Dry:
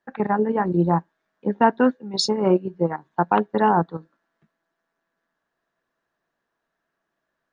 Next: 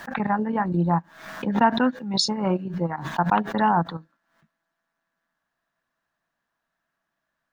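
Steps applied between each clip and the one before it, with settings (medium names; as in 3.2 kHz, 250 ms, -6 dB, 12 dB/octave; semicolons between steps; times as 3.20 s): peaking EQ 410 Hz -11.5 dB 0.8 oct; swell ahead of each attack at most 80 dB/s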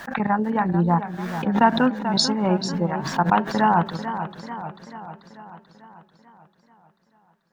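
modulated delay 440 ms, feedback 58%, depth 102 cents, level -10.5 dB; trim +2 dB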